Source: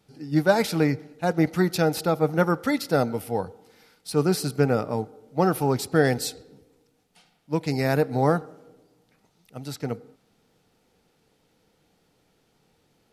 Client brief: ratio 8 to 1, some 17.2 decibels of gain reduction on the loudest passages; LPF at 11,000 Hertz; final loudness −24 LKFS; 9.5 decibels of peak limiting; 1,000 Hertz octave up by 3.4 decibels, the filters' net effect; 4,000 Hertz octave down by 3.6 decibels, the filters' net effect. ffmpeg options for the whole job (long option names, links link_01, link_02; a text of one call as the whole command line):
ffmpeg -i in.wav -af "lowpass=11000,equalizer=frequency=1000:width_type=o:gain=5,equalizer=frequency=4000:width_type=o:gain=-4.5,acompressor=threshold=-31dB:ratio=8,volume=16dB,alimiter=limit=-12dB:level=0:latency=1" out.wav